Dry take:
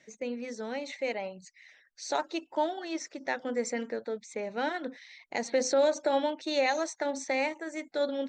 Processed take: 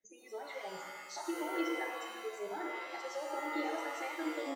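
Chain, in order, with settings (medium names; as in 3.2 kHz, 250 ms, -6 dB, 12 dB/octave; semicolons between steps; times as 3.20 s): treble shelf 2.3 kHz -8.5 dB; compression 8:1, threshold -40 dBFS, peak gain reduction 18.5 dB; high-pass 180 Hz 24 dB/octave; comb 2.4 ms, depth 34%; filtered feedback delay 194 ms, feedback 28%, low-pass 3.4 kHz, level -12 dB; time stretch by phase-locked vocoder 0.55×; dynamic bell 270 Hz, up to +6 dB, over -59 dBFS, Q 1.2; spectral noise reduction 26 dB; pitch-shifted reverb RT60 1.2 s, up +7 st, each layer -2 dB, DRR 2 dB; trim +2 dB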